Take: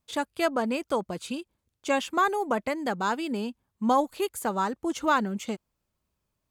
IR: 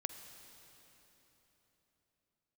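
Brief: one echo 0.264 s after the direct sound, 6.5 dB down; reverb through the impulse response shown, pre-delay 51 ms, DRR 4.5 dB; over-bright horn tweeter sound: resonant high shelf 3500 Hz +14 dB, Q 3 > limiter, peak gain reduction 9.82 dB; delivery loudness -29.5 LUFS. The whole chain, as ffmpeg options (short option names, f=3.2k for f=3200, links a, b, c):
-filter_complex "[0:a]aecho=1:1:264:0.473,asplit=2[a][b];[1:a]atrim=start_sample=2205,adelay=51[c];[b][c]afir=irnorm=-1:irlink=0,volume=-3.5dB[d];[a][d]amix=inputs=2:normalize=0,highshelf=f=3.5k:t=q:w=3:g=14,volume=-4dB,alimiter=limit=-19dB:level=0:latency=1"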